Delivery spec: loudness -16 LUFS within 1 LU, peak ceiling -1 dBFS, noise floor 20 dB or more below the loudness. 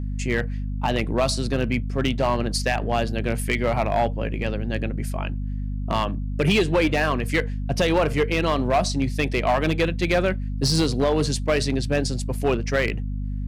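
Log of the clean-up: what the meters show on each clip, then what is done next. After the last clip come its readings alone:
clipped 1.6%; flat tops at -14.0 dBFS; hum 50 Hz; harmonics up to 250 Hz; hum level -25 dBFS; loudness -23.5 LUFS; peak -14.0 dBFS; loudness target -16.0 LUFS
-> clip repair -14 dBFS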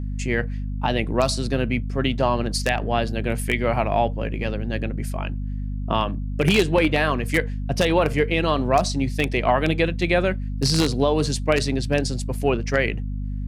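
clipped 0.0%; hum 50 Hz; harmonics up to 250 Hz; hum level -25 dBFS
-> notches 50/100/150/200/250 Hz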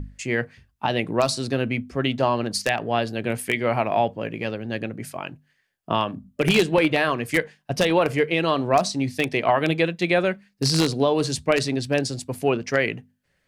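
hum none; loudness -23.0 LUFS; peak -4.0 dBFS; loudness target -16.0 LUFS
-> gain +7 dB; limiter -1 dBFS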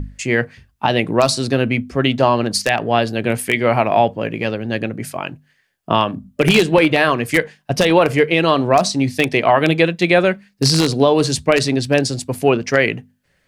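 loudness -16.5 LUFS; peak -1.0 dBFS; noise floor -63 dBFS

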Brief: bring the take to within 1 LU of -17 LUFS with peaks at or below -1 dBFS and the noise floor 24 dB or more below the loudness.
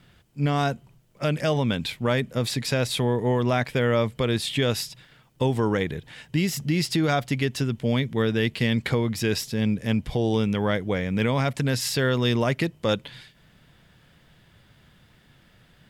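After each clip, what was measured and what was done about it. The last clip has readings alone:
loudness -25.0 LUFS; peak -11.5 dBFS; loudness target -17.0 LUFS
-> gain +8 dB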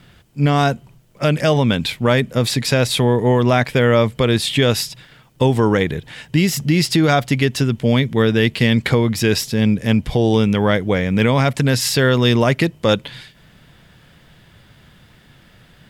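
loudness -17.0 LUFS; peak -3.5 dBFS; noise floor -50 dBFS

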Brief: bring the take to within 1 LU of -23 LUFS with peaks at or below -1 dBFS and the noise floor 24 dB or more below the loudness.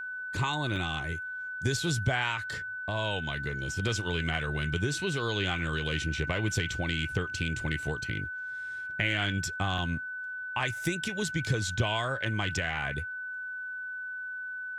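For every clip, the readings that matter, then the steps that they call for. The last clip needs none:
dropouts 3; longest dropout 1.6 ms; steady tone 1500 Hz; tone level -35 dBFS; loudness -31.5 LUFS; peak -12.5 dBFS; loudness target -23.0 LUFS
-> interpolate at 0.76/3.88/9.78, 1.6 ms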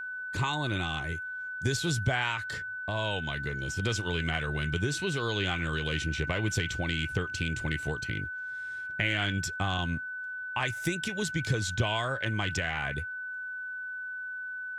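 dropouts 0; steady tone 1500 Hz; tone level -35 dBFS
-> notch 1500 Hz, Q 30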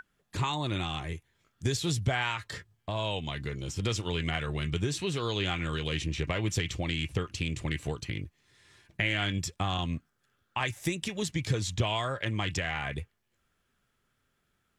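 steady tone none; loudness -32.0 LUFS; peak -13.0 dBFS; loudness target -23.0 LUFS
-> gain +9 dB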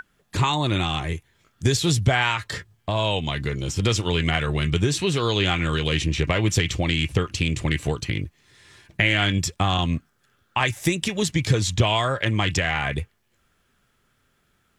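loudness -23.0 LUFS; peak -4.0 dBFS; noise floor -67 dBFS

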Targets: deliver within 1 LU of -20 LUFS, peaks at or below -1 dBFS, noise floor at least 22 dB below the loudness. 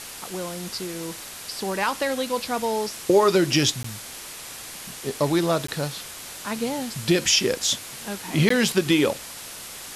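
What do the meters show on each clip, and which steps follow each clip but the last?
dropouts 3; longest dropout 14 ms; noise floor -39 dBFS; noise floor target -46 dBFS; loudness -24.0 LUFS; peak -6.5 dBFS; loudness target -20.0 LUFS
-> interpolate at 3.83/5.67/8.49, 14 ms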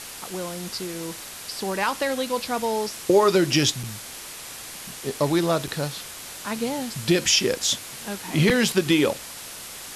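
dropouts 0; noise floor -39 dBFS; noise floor target -46 dBFS
-> noise print and reduce 7 dB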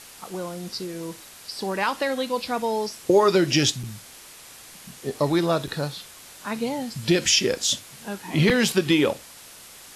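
noise floor -46 dBFS; loudness -23.5 LUFS; peak -6.5 dBFS; loudness target -20.0 LUFS
-> gain +3.5 dB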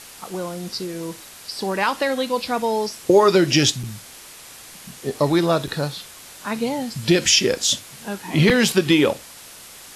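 loudness -20.0 LUFS; peak -3.0 dBFS; noise floor -42 dBFS

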